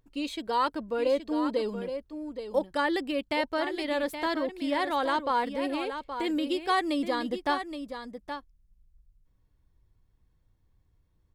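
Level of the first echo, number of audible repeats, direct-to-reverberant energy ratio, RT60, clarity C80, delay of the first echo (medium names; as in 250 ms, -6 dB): -9.0 dB, 1, no reverb, no reverb, no reverb, 822 ms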